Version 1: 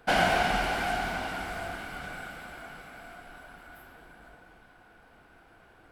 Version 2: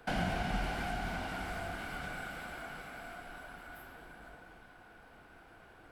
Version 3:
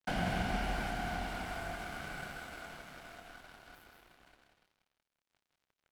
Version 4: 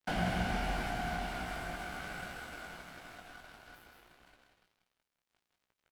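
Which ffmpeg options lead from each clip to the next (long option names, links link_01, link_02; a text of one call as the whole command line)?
ffmpeg -i in.wav -filter_complex "[0:a]acrossover=split=240[link_01][link_02];[link_02]acompressor=threshold=-39dB:ratio=3[link_03];[link_01][link_03]amix=inputs=2:normalize=0" out.wav
ffmpeg -i in.wav -filter_complex "[0:a]aeval=exprs='sgn(val(0))*max(abs(val(0))-0.00355,0)':channel_layout=same,asplit=2[link_01][link_02];[link_02]aecho=0:1:159|187|304:0.422|0.398|0.158[link_03];[link_01][link_03]amix=inputs=2:normalize=0" out.wav
ffmpeg -i in.wav -filter_complex "[0:a]asplit=2[link_01][link_02];[link_02]adelay=17,volume=-7dB[link_03];[link_01][link_03]amix=inputs=2:normalize=0" out.wav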